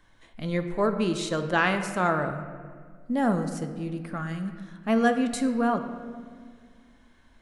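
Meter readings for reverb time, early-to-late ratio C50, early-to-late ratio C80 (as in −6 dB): 1.8 s, 9.0 dB, 10.0 dB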